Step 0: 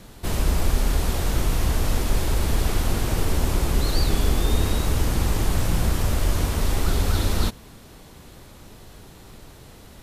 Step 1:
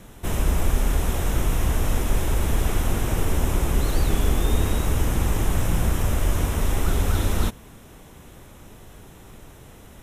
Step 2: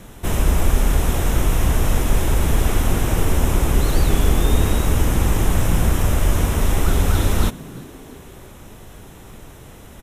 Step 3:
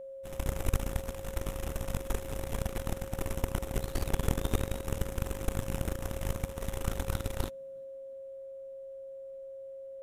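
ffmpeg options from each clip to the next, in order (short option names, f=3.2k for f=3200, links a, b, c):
-af "equalizer=f=4.5k:t=o:w=0.31:g=-14"
-filter_complex "[0:a]asplit=4[a][b][c][d];[b]adelay=339,afreqshift=120,volume=-22.5dB[e];[c]adelay=678,afreqshift=240,volume=-28.5dB[f];[d]adelay=1017,afreqshift=360,volume=-34.5dB[g];[a][e][f][g]amix=inputs=4:normalize=0,volume=4.5dB"
-af "aeval=exprs='0.708*(cos(1*acos(clip(val(0)/0.708,-1,1)))-cos(1*PI/2))+0.224*(cos(3*acos(clip(val(0)/0.708,-1,1)))-cos(3*PI/2))':c=same,aeval=exprs='val(0)+0.0224*sin(2*PI*540*n/s)':c=same,volume=-8.5dB"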